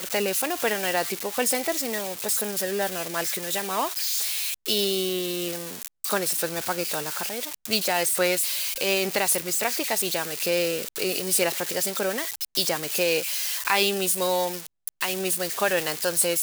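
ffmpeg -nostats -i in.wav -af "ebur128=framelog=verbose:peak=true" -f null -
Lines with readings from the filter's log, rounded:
Integrated loudness:
  I:         -24.5 LUFS
  Threshold: -34.6 LUFS
Loudness range:
  LRA:         2.3 LU
  Threshold: -44.6 LUFS
  LRA low:   -25.8 LUFS
  LRA high:  -23.4 LUFS
True peak:
  Peak:       -7.2 dBFS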